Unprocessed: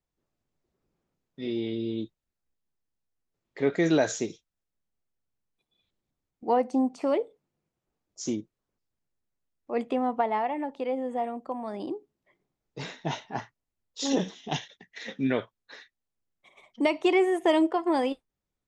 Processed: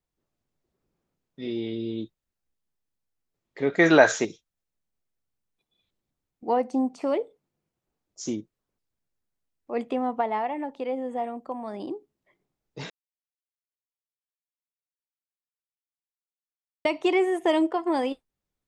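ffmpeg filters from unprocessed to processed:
ffmpeg -i in.wav -filter_complex "[0:a]asettb=1/sr,asplit=3[link_01][link_02][link_03];[link_01]atrim=end=3.794[link_04];[link_02]atrim=start=3.79:end=4.25,asetpts=PTS-STARTPTS,afade=type=in:duration=0.004:curve=qsin,afade=type=out:start_time=0.456:duration=0.004:curve=qsin,equalizer=frequency=1300:width=0.5:gain=14.5[link_05];[link_03]atrim=start=4.246[link_06];[link_04][link_05]acrossfade=duration=0.004:curve1=hsin:curve2=qsin[link_07];[link_07][link_06]acrossfade=duration=0.004:curve1=qsin:curve2=hsin,asplit=3[link_08][link_09][link_10];[link_08]atrim=end=12.9,asetpts=PTS-STARTPTS,afade=type=out:start_time=12.896:duration=0.004:curve=hsin[link_11];[link_09]atrim=start=12.9:end=16.85,asetpts=PTS-STARTPTS,volume=0[link_12];[link_10]atrim=start=16.85,asetpts=PTS-STARTPTS,afade=type=in:duration=0.004:curve=hsin[link_13];[link_11][link_12][link_13]concat=n=3:v=0:a=1" out.wav

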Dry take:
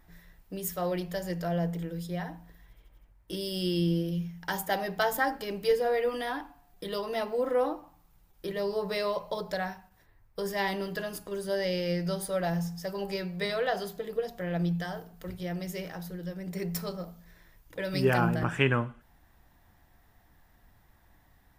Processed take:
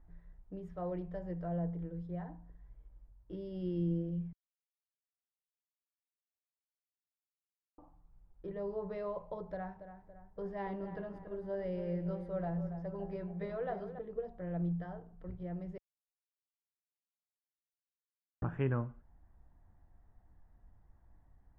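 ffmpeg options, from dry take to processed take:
ffmpeg -i in.wav -filter_complex "[0:a]asettb=1/sr,asplit=3[link_01][link_02][link_03];[link_01]atrim=end=9.474[link_04];[link_02]atrim=start=9.47:end=13.99,asetpts=PTS-STARTPTS,afade=type=in:duration=0.004:curve=qsin,afade=type=out:start_time=4.516:duration=0.004:curve=qsin,asplit=2[link_05][link_06];[link_06]adelay=281,lowpass=frequency=2300:poles=1,volume=-10dB,asplit=2[link_07][link_08];[link_08]adelay=281,lowpass=frequency=2300:poles=1,volume=0.52,asplit=2[link_09][link_10];[link_10]adelay=281,lowpass=frequency=2300:poles=1,volume=0.52,asplit=2[link_11][link_12];[link_12]adelay=281,lowpass=frequency=2300:poles=1,volume=0.52,asplit=2[link_13][link_14];[link_14]adelay=281,lowpass=frequency=2300:poles=1,volume=0.52,asplit=2[link_15][link_16];[link_16]adelay=281,lowpass=frequency=2300:poles=1,volume=0.52[link_17];[link_05][link_07][link_09][link_11][link_13][link_15][link_17]amix=inputs=7:normalize=0,atrim=end_sample=199332[link_18];[link_03]atrim=start=13.986[link_19];[link_04][link_18]acrossfade=duration=0.004:curve1=hsin:curve2=qsin[link_20];[link_20][link_19]acrossfade=duration=0.004:curve1=qsin:curve2=hsin,asplit=5[link_21][link_22][link_23][link_24][link_25];[link_21]atrim=end=4.33,asetpts=PTS-STARTPTS,afade=type=out:start_time=4.326:duration=0.004:curve=hsin[link_26];[link_22]atrim=start=4.33:end=7.78,asetpts=PTS-STARTPTS,volume=0[link_27];[link_23]atrim=start=7.78:end=15.78,asetpts=PTS-STARTPTS,afade=type=in:duration=0.004:curve=hsin,afade=type=out:start_time=7.996:duration=0.004:curve=hsin[link_28];[link_24]atrim=start=15.78:end=18.42,asetpts=PTS-STARTPTS,volume=0[link_29];[link_25]atrim=start=18.42,asetpts=PTS-STARTPTS,afade=type=in:duration=0.004:curve=hsin[link_30];[link_26][link_27][link_28][link_29][link_30]concat=n=5:v=0:a=1,lowpass=1100,lowshelf=frequency=95:gain=11.5,volume=-8.5dB" out.wav

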